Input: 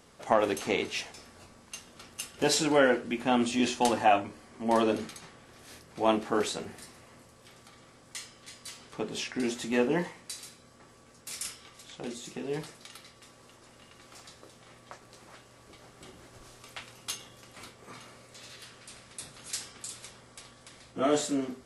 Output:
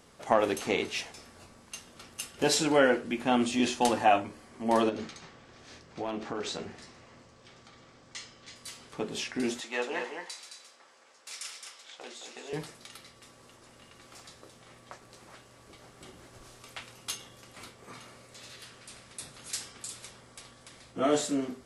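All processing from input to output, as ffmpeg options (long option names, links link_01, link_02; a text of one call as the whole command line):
ffmpeg -i in.wav -filter_complex "[0:a]asettb=1/sr,asplit=3[link_01][link_02][link_03];[link_01]atrim=end=4.894[link_04];[link_02]atrim=start=4.89:end=8.56,asetpts=PTS-STARTPTS,afade=type=in:duration=0.004:curve=qsin,afade=type=out:start_time=3.666:duration=0.004:curve=qsin,lowpass=frequency=6900:width=0.5412,lowpass=frequency=6900:width=1.3066,aeval=exprs='clip(val(0),-1,0.1)':channel_layout=same,acompressor=threshold=-30dB:ratio=6:attack=3.2:release=140:knee=1:detection=peak[link_05];[link_03]atrim=start=8.556[link_06];[link_04][link_05]acrossfade=duration=0.004:curve1=hsin:curve2=qsin[link_07];[link_07][link_06]acrossfade=duration=0.004:curve1=qsin:curve2=hsin,asettb=1/sr,asplit=3[link_08][link_09][link_10];[link_08]atrim=end=9.604[link_11];[link_09]atrim=start=9.6:end=12.53,asetpts=PTS-STARTPTS,afade=type=in:duration=0.004:curve=qsin,afade=type=out:start_time=2.926:duration=0.004:curve=qsin,highpass=650,lowpass=7000,aecho=1:1:217:0.501,atrim=end_sample=129213[link_12];[link_10]atrim=start=12.526[link_13];[link_11][link_12]acrossfade=duration=0.004:curve1=hsin:curve2=qsin[link_14];[link_14][link_13]acrossfade=duration=0.004:curve1=qsin:curve2=hsin" out.wav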